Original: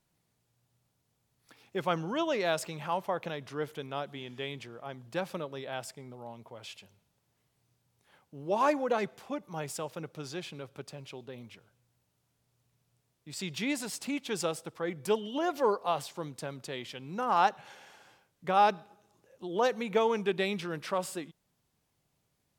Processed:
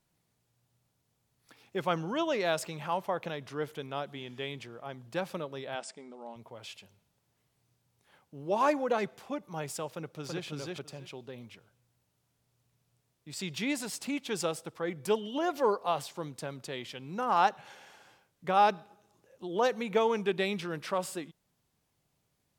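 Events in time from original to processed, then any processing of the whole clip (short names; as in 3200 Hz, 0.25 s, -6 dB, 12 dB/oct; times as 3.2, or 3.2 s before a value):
5.75–6.36 brick-wall FIR band-pass 160–9400 Hz
9.91–10.45 echo throw 0.33 s, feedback 15%, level -1.5 dB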